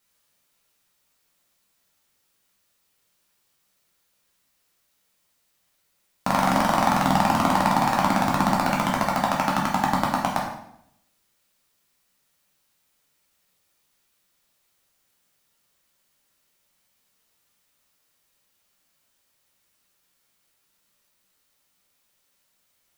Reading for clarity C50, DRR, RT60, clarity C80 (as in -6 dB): 4.0 dB, -3.0 dB, 0.70 s, 7.0 dB